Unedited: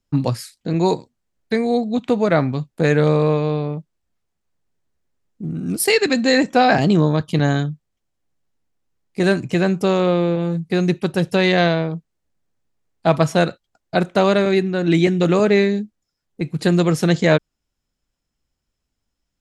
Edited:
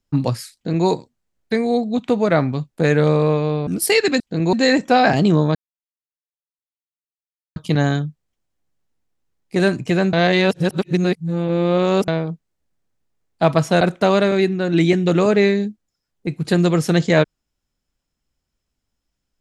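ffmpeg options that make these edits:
-filter_complex "[0:a]asplit=8[a][b][c][d][e][f][g][h];[a]atrim=end=3.672[i];[b]atrim=start=5.648:end=6.182[j];[c]atrim=start=0.538:end=0.872[k];[d]atrim=start=6.178:end=7.2,asetpts=PTS-STARTPTS,afade=t=out:st=1.018:d=0.004:c=hsin,apad=pad_dur=2.01[l];[e]atrim=start=7.2:end=9.772,asetpts=PTS-STARTPTS,afade=t=in:d=0.004:c=hsin[m];[f]atrim=start=9.768:end=11.722,asetpts=PTS-STARTPTS,areverse[n];[g]atrim=start=11.718:end=13.452[o];[h]atrim=start=13.948[p];[i][j]acrossfade=d=0.004:c1=hsin:c2=hsin[q];[q][k]acrossfade=d=0.004:c1=hsin:c2=hsin[r];[l][m]concat=n=2:v=0:a=1[s];[r][s]acrossfade=d=0.004:c1=hsin:c2=hsin[t];[t][n]acrossfade=d=0.004:c1=hsin:c2=hsin[u];[u][o]acrossfade=d=0.004:c1=hsin:c2=hsin[v];[v][p]acrossfade=d=0.004:c1=hsin:c2=hsin"

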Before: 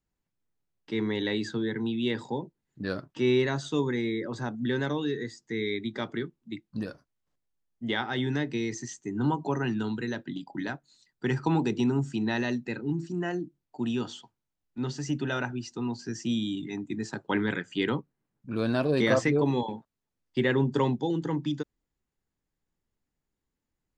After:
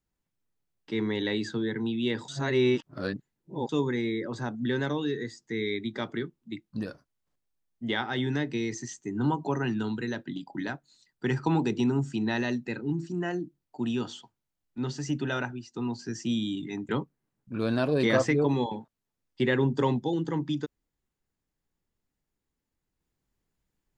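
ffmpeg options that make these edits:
-filter_complex "[0:a]asplit=5[a][b][c][d][e];[a]atrim=end=2.282[f];[b]atrim=start=2.278:end=3.692,asetpts=PTS-STARTPTS,areverse[g];[c]atrim=start=3.688:end=15.74,asetpts=PTS-STARTPTS,afade=t=out:st=11.712:d=0.34:silence=0.237137[h];[d]atrim=start=15.74:end=16.892,asetpts=PTS-STARTPTS,afade=t=in:d=0.004:c=hsin:silence=0.237137[i];[e]atrim=start=17.858[j];[f][g]acrossfade=d=0.004:c1=hsin:c2=hsin[k];[h][i]concat=n=2:v=0:a=1[l];[k][l]acrossfade=d=0.004:c1=hsin:c2=hsin[m];[m][j]acrossfade=d=0.004:c1=hsin:c2=hsin"

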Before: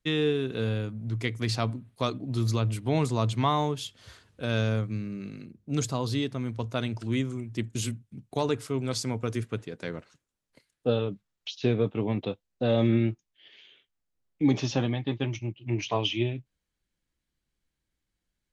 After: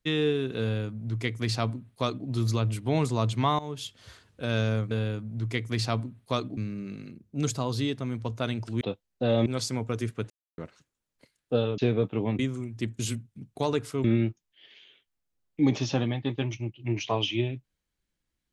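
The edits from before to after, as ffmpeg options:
-filter_complex "[0:a]asplit=11[a][b][c][d][e][f][g][h][i][j][k];[a]atrim=end=3.59,asetpts=PTS-STARTPTS,afade=t=out:st=3.586:d=0.004:c=hsin:silence=0.11885[l];[b]atrim=start=3.59:end=4.912,asetpts=PTS-STARTPTS,afade=t=in:d=0.27:silence=0.11885[m];[c]atrim=start=0.608:end=2.272[n];[d]atrim=start=4.908:end=7.152[o];[e]atrim=start=12.208:end=12.862[p];[f]atrim=start=8.798:end=9.64,asetpts=PTS-STARTPTS,afade=t=out:st=0.838:d=0.004:c=hsin[q];[g]atrim=start=9.64:end=9.92,asetpts=PTS-STARTPTS,volume=0[r];[h]atrim=start=9.92:end=11.122,asetpts=PTS-STARTPTS,afade=t=in:d=0.004:c=hsin[s];[i]atrim=start=11.598:end=12.212[t];[j]atrim=start=7.148:end=8.802[u];[k]atrim=start=12.858[v];[l][m]concat=n=2:v=0:a=1[w];[w][n]acrossfade=d=0.004:c1=hsin:c2=hsin[x];[x][o]acrossfade=d=0.004:c1=hsin:c2=hsin[y];[y][p]acrossfade=d=0.004:c1=hsin:c2=hsin[z];[q][r][s]concat=n=3:v=0:a=1[aa];[z][aa]acrossfade=d=0.004:c1=hsin:c2=hsin[ab];[ab][t]acrossfade=d=0.004:c1=hsin:c2=hsin[ac];[ac][u]acrossfade=d=0.004:c1=hsin:c2=hsin[ad];[ad][v]acrossfade=d=0.004:c1=hsin:c2=hsin"

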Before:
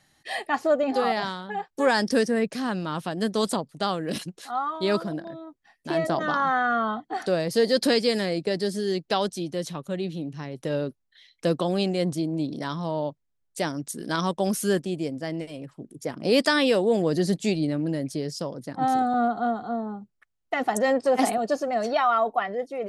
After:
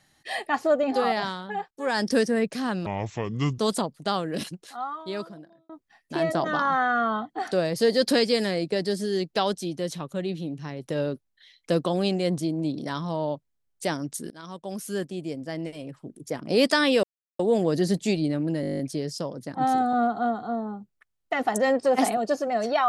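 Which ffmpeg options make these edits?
-filter_complex "[0:a]asplit=16[a][b][c][d][e][f][g][h][i][j][k][l][m][n][o][p];[a]atrim=end=1.71,asetpts=PTS-STARTPTS,afade=t=out:st=1.706:d=0.004:c=hsin:silence=0.0630957[q];[b]atrim=start=1.71:end=2.864,asetpts=PTS-STARTPTS,afade=t=in:d=0.36:silence=0.0630957[r];[c]atrim=start=2.86:end=3.33,asetpts=PTS-STARTPTS,asetrate=28665,aresample=44100[s];[d]atrim=start=3.326:end=5.44,asetpts=PTS-STARTPTS,afade=t=out:st=0.674:d=1.44[t];[e]atrim=start=5.44:end=14.05,asetpts=PTS-STARTPTS,afade=t=in:d=0.004:c=hsin,afade=t=out:st=8.606:d=0.004:c=hsin:silence=0.0841395[u];[f]atrim=start=14.05:end=16.78,asetpts=PTS-STARTPTS,afade=t=in:d=1.53:silence=0.0841395,afade=t=out:st=2.726:d=0.004:c=hsin,apad=pad_dur=0.36[v];[g]atrim=start=16.78:end=18.022,asetpts=PTS-STARTPTS,afade=t=in:d=0.004:c=hsin[w];[h]atrim=start=17.998:end=18.022[x];[i]atrim=start=17.998:end=18.022[y];[j]atrim=start=17.998:end=18.022[z];[k]atrim=start=17.998:end=18.022[aa];[l]atrim=start=17.998:end=18.022[ab];[m]atrim=start=17.998:end=18.022[ac];[n]atrim=start=17.998:end=18.022[ad];[o]atrim=start=17.998:end=18.022[ae];[p]atrim=start=17.998[af];[q][r]concat=n=2:v=0:a=1[ag];[ag][s]acrossfade=d=0.004:c1=hsin:c2=hsin[ah];[t][u][v][w]concat=n=4:v=0:a=1[ai];[ah][ai]acrossfade=d=0.004:c1=hsin:c2=hsin[aj];[aj][x]acrossfade=d=0.004:c1=hsin:c2=hsin[ak];[ak][y]acrossfade=d=0.004:c1=hsin:c2=hsin[al];[al][z]acrossfade=d=0.004:c1=hsin:c2=hsin[am];[am][aa]acrossfade=d=0.004:c1=hsin:c2=hsin[an];[an][ab]acrossfade=d=0.004:c1=hsin:c2=hsin[ao];[ao][ac]acrossfade=d=0.004:c1=hsin:c2=hsin[ap];[ap][ad]acrossfade=d=0.004:c1=hsin:c2=hsin[aq];[aq][ae]acrossfade=d=0.004:c1=hsin:c2=hsin[ar];[ar][af]acrossfade=d=0.004:c1=hsin:c2=hsin"

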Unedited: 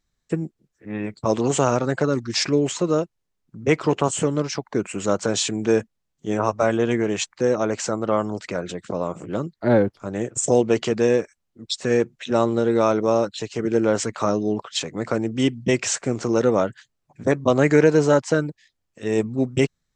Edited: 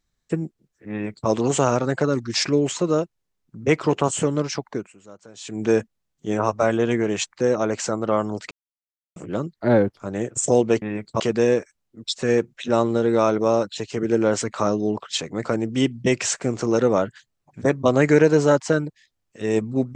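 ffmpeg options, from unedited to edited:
-filter_complex "[0:a]asplit=7[a][b][c][d][e][f][g];[a]atrim=end=4.99,asetpts=PTS-STARTPTS,afade=t=out:st=4.69:d=0.3:c=qua:silence=0.0707946[h];[b]atrim=start=4.99:end=5.32,asetpts=PTS-STARTPTS,volume=-23dB[i];[c]atrim=start=5.32:end=8.51,asetpts=PTS-STARTPTS,afade=t=in:d=0.3:c=qua:silence=0.0707946,afade=t=out:st=3.186:d=0.004:c=hsin[j];[d]atrim=start=8.51:end=9.16,asetpts=PTS-STARTPTS,volume=0[k];[e]atrim=start=9.16:end=10.822,asetpts=PTS-STARTPTS,afade=t=in:d=0.004:c=hsin[l];[f]atrim=start=0.908:end=1.292[m];[g]atrim=start=10.818[n];[h][i][j][k][l]concat=n=5:v=0:a=1[o];[o][m]acrossfade=d=0.004:c1=hsin:c2=hsin[p];[p][n]acrossfade=d=0.004:c1=hsin:c2=hsin"

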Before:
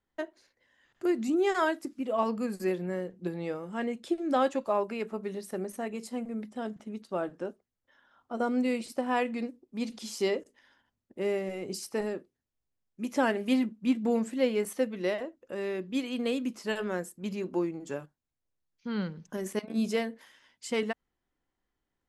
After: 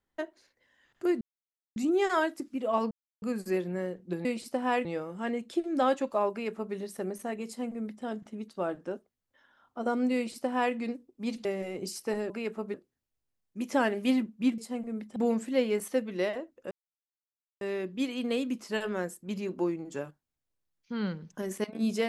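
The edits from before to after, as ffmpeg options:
-filter_complex "[0:a]asplit=11[a][b][c][d][e][f][g][h][i][j][k];[a]atrim=end=1.21,asetpts=PTS-STARTPTS,afade=t=out:st=1.206:d=0.004:c=hsin,apad=pad_dur=0.55[l];[b]atrim=start=1.21:end=2.36,asetpts=PTS-STARTPTS,afade=t=in:d=0.004:c=hsin,afade=t=out:st=1.146:d=0.004:c=hsin,apad=pad_dur=0.31[m];[c]atrim=start=2.36:end=3.392,asetpts=PTS-STARTPTS,afade=t=in:d=0.004:c=hsin[n];[d]atrim=start=8.688:end=9.292[o];[e]atrim=start=3.388:end=9.992[p];[f]atrim=start=11.318:end=12.172[q];[g]atrim=start=4.848:end=5.292[r];[h]atrim=start=12.168:end=14.012[s];[i]atrim=start=5.998:end=6.582[t];[j]atrim=start=14.008:end=15.56,asetpts=PTS-STARTPTS,afade=t=out:st=1.548:d=0.004:c=hsin,apad=pad_dur=0.9[u];[k]atrim=start=15.56,asetpts=PTS-STARTPTS,afade=t=in:d=0.004:c=hsin[v];[l][m][n]concat=n=3:v=0:a=1[w];[w][o]acrossfade=d=0.004:c1=hsin:c2=hsin[x];[x][p]acrossfade=d=0.004:c1=hsin:c2=hsin[y];[y][q]acrossfade=d=0.004:c1=hsin:c2=hsin[z];[z][r]acrossfade=d=0.004:c1=hsin:c2=hsin[aa];[aa][s]acrossfade=d=0.004:c1=hsin:c2=hsin[ab];[ab][t]acrossfade=d=0.004:c1=hsin:c2=hsin[ac];[u][v]concat=n=2:v=0:a=1[ad];[ac][ad]acrossfade=d=0.004:c1=hsin:c2=hsin"

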